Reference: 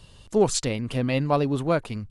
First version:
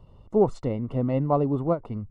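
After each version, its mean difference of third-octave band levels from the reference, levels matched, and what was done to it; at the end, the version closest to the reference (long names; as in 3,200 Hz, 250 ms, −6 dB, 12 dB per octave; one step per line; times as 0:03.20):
6.5 dB: Savitzky-Golay smoothing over 65 samples
every ending faded ahead of time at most 310 dB per second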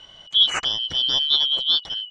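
13.0 dB: band-splitting scrambler in four parts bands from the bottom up 3412
high-frequency loss of the air 160 metres
level +6 dB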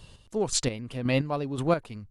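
3.5 dB: square-wave tremolo 1.9 Hz, depth 60%, duty 30%
tape wow and flutter 22 cents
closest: third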